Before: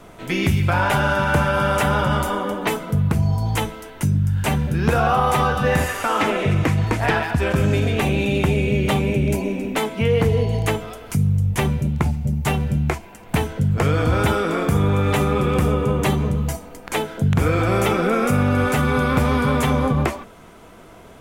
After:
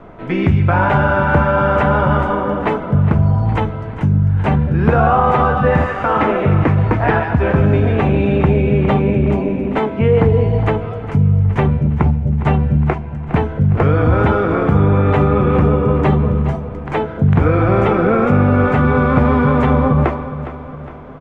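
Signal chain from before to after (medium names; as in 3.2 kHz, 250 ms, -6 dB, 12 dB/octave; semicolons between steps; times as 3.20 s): low-pass 1.6 kHz 12 dB/octave; feedback delay 411 ms, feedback 51%, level -13 dB; trim +5.5 dB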